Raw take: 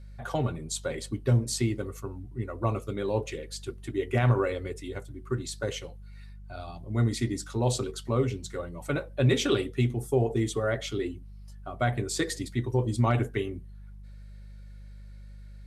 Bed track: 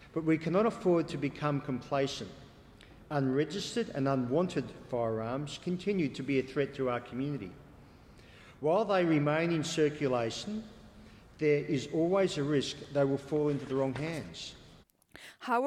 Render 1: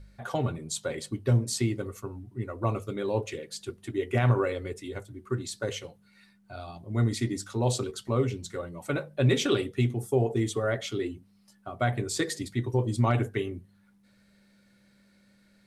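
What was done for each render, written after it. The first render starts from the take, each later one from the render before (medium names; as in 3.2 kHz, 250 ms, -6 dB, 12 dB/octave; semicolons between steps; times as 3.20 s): de-hum 50 Hz, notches 3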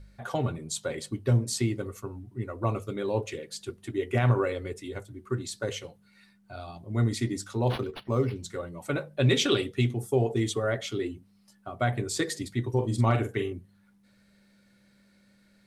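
7.67–8.36 s: decimation joined by straight lines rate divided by 6×; 9.05–10.54 s: dynamic bell 3.7 kHz, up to +5 dB, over -46 dBFS, Q 0.84; 12.72–13.53 s: doubling 44 ms -8 dB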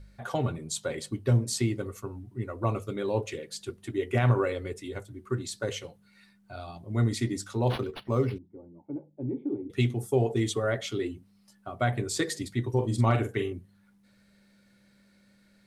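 8.38–9.70 s: cascade formant filter u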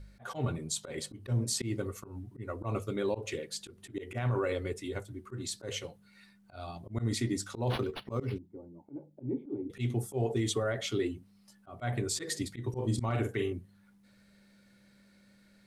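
slow attack 134 ms; peak limiter -21.5 dBFS, peak gain reduction 10 dB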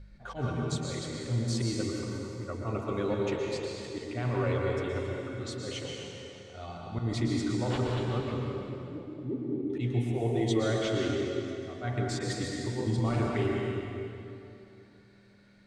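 distance through air 93 m; plate-style reverb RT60 2.8 s, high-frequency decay 0.85×, pre-delay 105 ms, DRR -1.5 dB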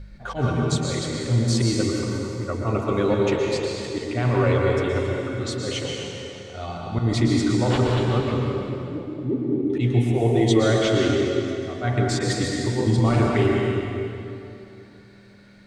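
trim +9.5 dB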